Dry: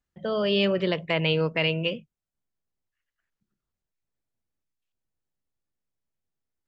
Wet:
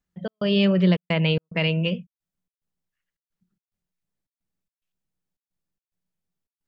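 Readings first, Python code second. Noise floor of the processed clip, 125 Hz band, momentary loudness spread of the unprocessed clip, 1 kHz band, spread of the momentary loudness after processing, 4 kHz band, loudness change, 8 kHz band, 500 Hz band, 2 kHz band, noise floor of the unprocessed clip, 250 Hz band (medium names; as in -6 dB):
under -85 dBFS, +7.5 dB, 7 LU, -2.0 dB, 10 LU, 0.0 dB, +3.0 dB, no reading, -1.0 dB, 0.0 dB, under -85 dBFS, +7.0 dB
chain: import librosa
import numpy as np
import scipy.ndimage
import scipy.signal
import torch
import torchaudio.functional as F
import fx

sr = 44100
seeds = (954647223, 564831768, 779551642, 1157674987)

y = fx.peak_eq(x, sr, hz=180.0, db=14.5, octaves=0.29)
y = fx.step_gate(y, sr, bpm=109, pattern='xx.xxxx.', floor_db=-60.0, edge_ms=4.5)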